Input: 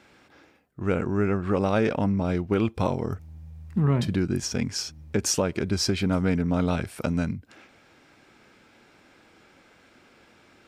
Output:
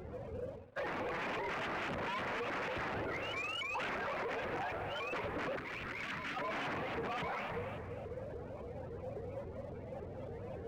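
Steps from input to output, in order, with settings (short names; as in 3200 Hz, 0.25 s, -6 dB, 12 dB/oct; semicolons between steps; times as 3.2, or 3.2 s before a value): spectrum mirrored in octaves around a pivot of 470 Hz; small resonant body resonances 270/680 Hz, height 15 dB, ringing for 45 ms; wrapped overs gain 19 dB; mistuned SSB -180 Hz 330–2800 Hz; Schroeder reverb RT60 1.4 s, combs from 32 ms, DRR 14 dB; limiter -32.5 dBFS, peak gain reduction 17.5 dB; compressor, threshold -46 dBFS, peak gain reduction 9 dB; sample leveller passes 2; 5.57–6.37 band shelf 620 Hz -10.5 dB; shaped vibrato saw up 3.6 Hz, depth 250 cents; gain +4.5 dB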